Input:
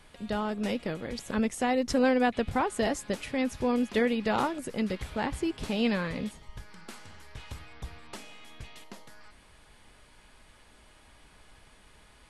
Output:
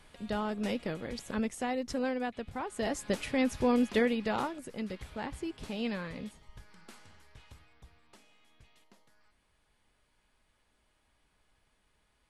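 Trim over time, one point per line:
1.06 s -2.5 dB
2.53 s -11.5 dB
3.12 s +0.5 dB
3.83 s +0.5 dB
4.63 s -7.5 dB
7.04 s -7.5 dB
7.91 s -16 dB

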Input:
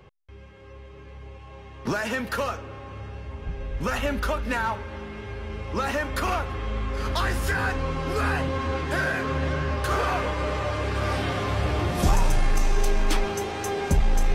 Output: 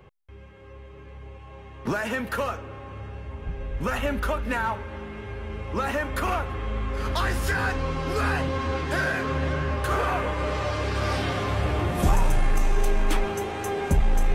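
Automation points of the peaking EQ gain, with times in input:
peaking EQ 5 kHz 0.93 oct
6.77 s -6.5 dB
7.46 s +1 dB
9.08 s +1 dB
10.25 s -8 dB
10.63 s +3.5 dB
11.15 s +3.5 dB
11.92 s -7.5 dB

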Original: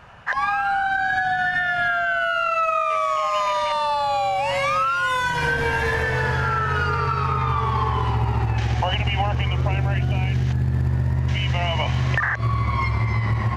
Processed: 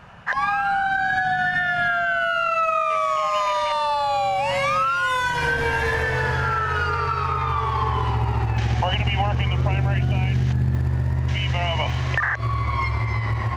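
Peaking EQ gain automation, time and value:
peaking EQ 180 Hz 0.73 oct
+6.5 dB
from 3.38 s -4 dB
from 4.16 s +4.5 dB
from 4.98 s -4 dB
from 6.53 s -12.5 dB
from 7.82 s -4 dB
from 8.57 s +2.5 dB
from 10.75 s -4 dB
from 11.90 s -10.5 dB

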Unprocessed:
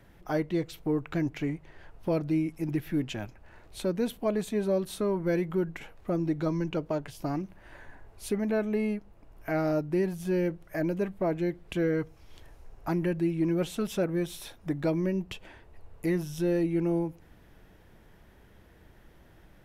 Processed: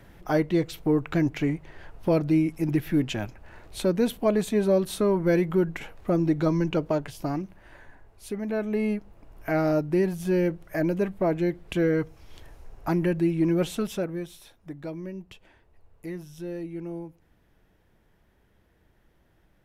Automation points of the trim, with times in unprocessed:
6.87 s +5.5 dB
8.25 s -4 dB
8.93 s +4 dB
13.72 s +4 dB
14.44 s -8 dB

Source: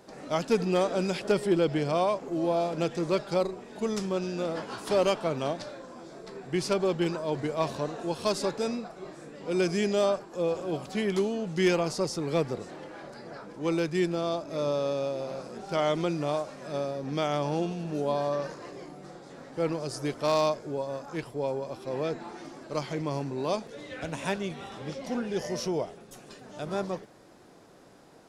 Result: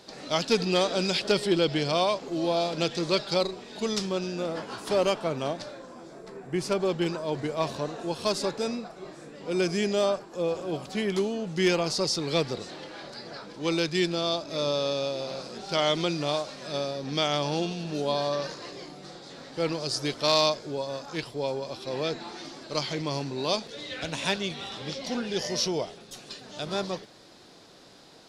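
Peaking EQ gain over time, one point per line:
peaking EQ 4.1 kHz 1.3 oct
3.90 s +14 dB
4.41 s +2.5 dB
5.85 s +2.5 dB
6.49 s -7 dB
6.87 s +4 dB
11.58 s +4 dB
12.13 s +14 dB

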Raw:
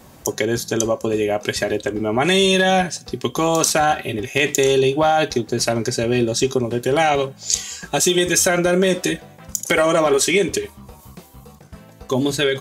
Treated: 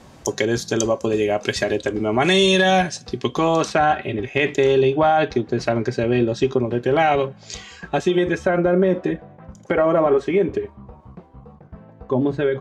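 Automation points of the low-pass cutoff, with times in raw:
2.91 s 6.6 kHz
3.77 s 2.5 kHz
7.78 s 2.5 kHz
8.60 s 1.2 kHz

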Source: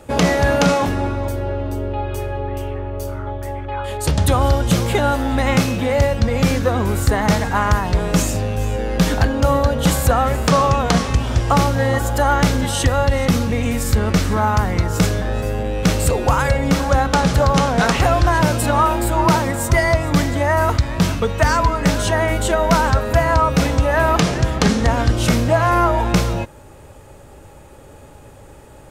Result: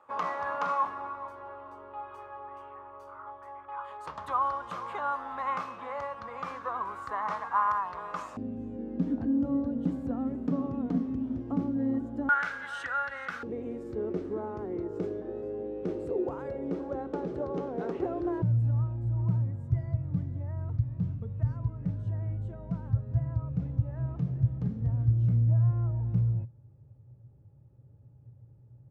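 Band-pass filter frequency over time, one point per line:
band-pass filter, Q 7.4
1.1 kHz
from 8.37 s 260 Hz
from 12.29 s 1.5 kHz
from 13.43 s 370 Hz
from 18.42 s 120 Hz

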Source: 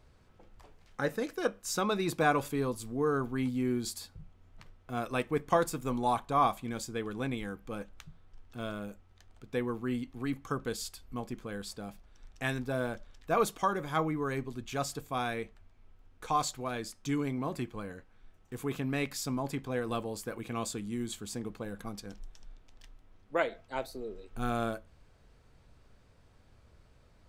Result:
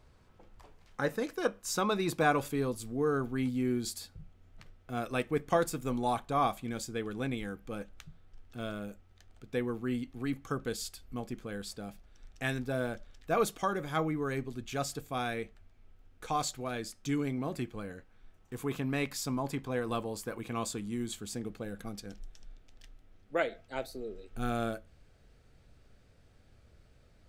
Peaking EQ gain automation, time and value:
peaking EQ 1 kHz 0.37 oct
1.91 s +2 dB
2.77 s -6.5 dB
17.87 s -6.5 dB
18.57 s +1.5 dB
20.86 s +1.5 dB
21.49 s -9.5 dB

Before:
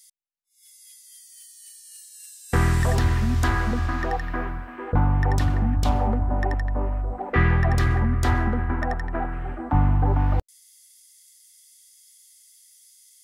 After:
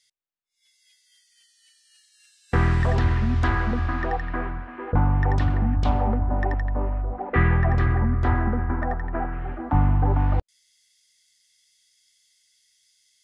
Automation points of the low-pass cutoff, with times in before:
7.02 s 3.4 kHz
8.07 s 1.8 kHz
9.01 s 1.8 kHz
9.55 s 4.3 kHz

